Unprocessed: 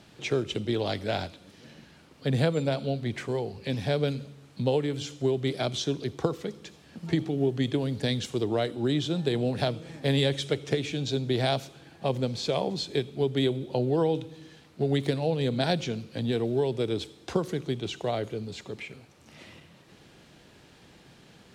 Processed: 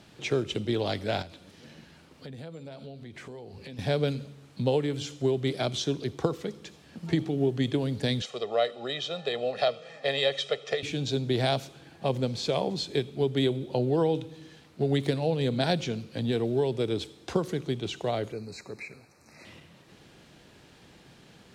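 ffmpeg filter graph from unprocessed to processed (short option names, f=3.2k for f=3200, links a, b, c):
-filter_complex "[0:a]asettb=1/sr,asplit=3[a][b][c];[a]atrim=end=1.224[d];[b]atrim=start=1.22:end=3.79,asetpts=PTS-STARTPTS,afade=t=in:d=0.004:c=qsin,afade=t=out:st=2.566:d=0.004:c=qsin,acompressor=threshold=-41dB:ratio=5:attack=3.2:release=140:knee=1:detection=peak,asplit=2[e][f];[f]adelay=12,volume=-13dB[g];[e][g]amix=inputs=2:normalize=0,atrim=end_sample=113337[h];[c]atrim=start=3.786[i];[d][h]acrossfade=d=0.004:c1=hsin:c2=qsin[j];[j][i]acrossfade=d=0.004:c1=qsin:c2=hsin,asettb=1/sr,asplit=3[k][l][m];[k]atrim=end=8.224[n];[l]atrim=start=8.22:end=10.83,asetpts=PTS-STARTPTS,afade=t=in:d=0.004:c=qsin,afade=t=out:st=2.606:d=0.004:c=qsin,highpass=420,lowpass=5.1k,aecho=1:1:1.6:0.86,atrim=end_sample=115101[o];[m]atrim=start=10.826[p];[n][o]acrossfade=d=0.004:c1=hsin:c2=qsin[q];[q][p]acrossfade=d=0.004:c1=qsin:c2=hsin,asettb=1/sr,asplit=3[r][s][t];[r]atrim=end=18.324[u];[s]atrim=start=18.32:end=19.45,asetpts=PTS-STARTPTS,afade=t=in:d=0.004:c=qsin,afade=t=out:st=1.126:d=0.004:c=qsin,asuperstop=centerf=3200:order=20:qfactor=2.7,lowshelf=f=410:g=-5[v];[t]atrim=start=19.446[w];[u][v]acrossfade=d=0.004:c1=hsin:c2=qsin[x];[x][w]acrossfade=d=0.004:c1=qsin:c2=hsin"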